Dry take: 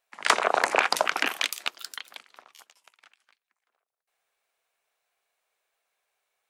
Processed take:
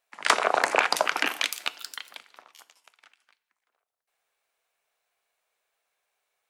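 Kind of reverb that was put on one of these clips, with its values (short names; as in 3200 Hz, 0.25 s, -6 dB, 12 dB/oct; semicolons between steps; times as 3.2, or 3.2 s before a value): FDN reverb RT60 0.76 s, low-frequency decay 0.9×, high-frequency decay 0.95×, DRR 14.5 dB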